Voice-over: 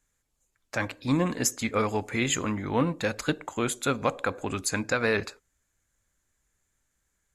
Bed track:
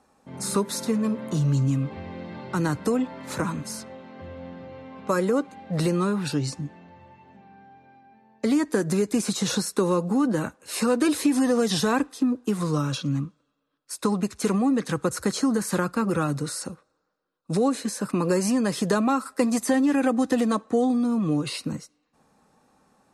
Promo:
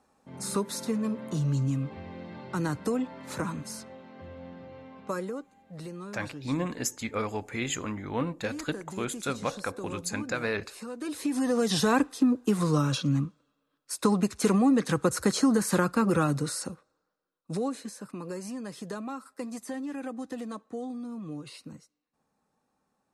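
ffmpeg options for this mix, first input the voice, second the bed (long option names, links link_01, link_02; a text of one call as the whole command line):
ffmpeg -i stem1.wav -i stem2.wav -filter_complex "[0:a]adelay=5400,volume=-5dB[link_01];[1:a]volume=12dB,afade=type=out:start_time=4.83:duration=0.62:silence=0.251189,afade=type=in:start_time=10.97:duration=1.04:silence=0.141254,afade=type=out:start_time=16.17:duration=1.93:silence=0.188365[link_02];[link_01][link_02]amix=inputs=2:normalize=0" out.wav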